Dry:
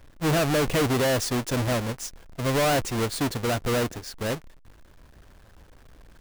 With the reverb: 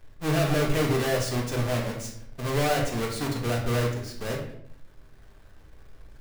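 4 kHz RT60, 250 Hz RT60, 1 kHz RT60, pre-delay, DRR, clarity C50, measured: 0.50 s, 0.85 s, 0.60 s, 3 ms, -1.0 dB, 5.5 dB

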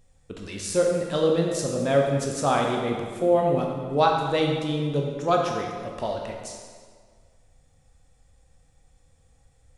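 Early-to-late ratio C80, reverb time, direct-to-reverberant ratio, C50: 4.0 dB, 1.8 s, 0.0 dB, 2.5 dB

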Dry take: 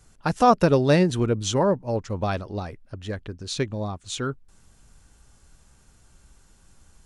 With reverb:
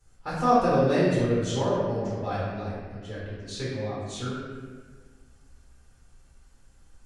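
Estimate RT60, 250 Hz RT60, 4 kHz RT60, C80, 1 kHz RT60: 1.6 s, 2.1 s, 1.2 s, 0.5 dB, 1.4 s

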